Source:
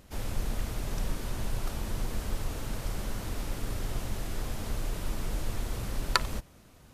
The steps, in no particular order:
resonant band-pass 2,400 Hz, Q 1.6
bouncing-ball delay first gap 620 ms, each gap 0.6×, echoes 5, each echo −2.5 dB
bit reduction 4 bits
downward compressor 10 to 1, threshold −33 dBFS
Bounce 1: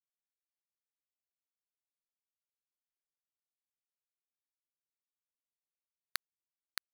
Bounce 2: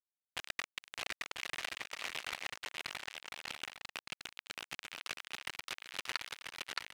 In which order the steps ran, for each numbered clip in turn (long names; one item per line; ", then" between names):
resonant band-pass, then downward compressor, then bit reduction, then bouncing-ball delay
bit reduction, then resonant band-pass, then downward compressor, then bouncing-ball delay